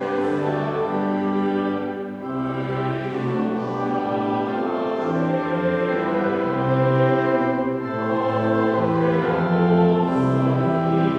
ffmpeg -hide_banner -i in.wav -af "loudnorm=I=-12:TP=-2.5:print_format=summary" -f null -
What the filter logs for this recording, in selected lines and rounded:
Input Integrated:    -21.2 LUFS
Input True Peak:      -7.3 dBTP
Input LRA:             4.7 LU
Input Threshold:     -31.2 LUFS